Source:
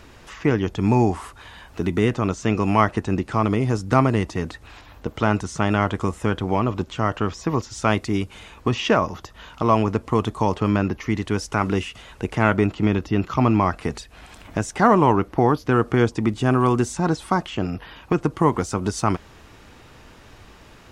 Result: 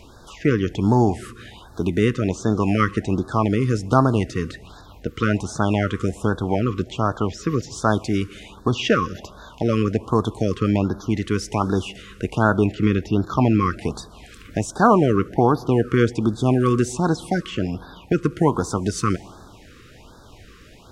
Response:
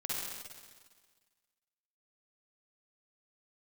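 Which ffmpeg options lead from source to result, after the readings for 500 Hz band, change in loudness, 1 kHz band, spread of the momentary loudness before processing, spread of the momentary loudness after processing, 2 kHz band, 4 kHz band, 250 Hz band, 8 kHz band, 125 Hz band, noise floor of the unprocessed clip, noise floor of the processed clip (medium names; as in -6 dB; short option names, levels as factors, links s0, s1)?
+0.5 dB, +0.5 dB, -1.5 dB, 11 LU, 11 LU, -1.0 dB, +0.5 dB, +1.0 dB, +1.0 dB, +1.0 dB, -47 dBFS, -46 dBFS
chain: -filter_complex "[0:a]asplit=2[s0][s1];[1:a]atrim=start_sample=2205,adelay=71[s2];[s1][s2]afir=irnorm=-1:irlink=0,volume=0.0631[s3];[s0][s3]amix=inputs=2:normalize=0,afftfilt=real='re*(1-between(b*sr/1024,720*pow(2500/720,0.5+0.5*sin(2*PI*1.3*pts/sr))/1.41,720*pow(2500/720,0.5+0.5*sin(2*PI*1.3*pts/sr))*1.41))':imag='im*(1-between(b*sr/1024,720*pow(2500/720,0.5+0.5*sin(2*PI*1.3*pts/sr))/1.41,720*pow(2500/720,0.5+0.5*sin(2*PI*1.3*pts/sr))*1.41))':win_size=1024:overlap=0.75,volume=1.12"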